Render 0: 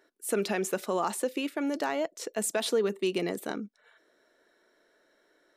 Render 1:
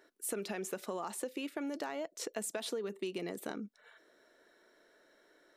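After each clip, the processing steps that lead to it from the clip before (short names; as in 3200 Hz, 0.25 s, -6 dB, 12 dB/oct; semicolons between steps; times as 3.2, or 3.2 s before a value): compressor, threshold -37 dBFS, peak gain reduction 13.5 dB; gain +1 dB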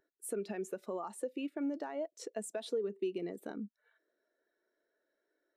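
spectral expander 1.5:1; gain -2 dB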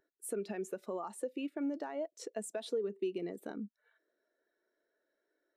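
nothing audible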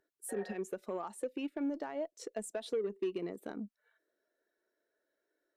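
spectral repair 0.32–0.53, 470–1900 Hz after; added harmonics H 4 -44 dB, 5 -26 dB, 7 -25 dB, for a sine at -25.5 dBFS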